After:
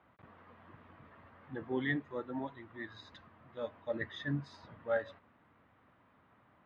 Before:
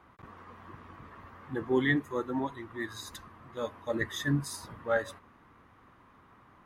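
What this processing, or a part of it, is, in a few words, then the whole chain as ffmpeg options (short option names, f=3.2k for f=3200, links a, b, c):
guitar cabinet: -af "highpass=79,equalizer=f=370:t=q:w=4:g=-4,equalizer=f=620:t=q:w=4:g=5,equalizer=f=1.1k:t=q:w=4:g=-5,lowpass=f=3.9k:w=0.5412,lowpass=f=3.9k:w=1.3066,volume=-6.5dB"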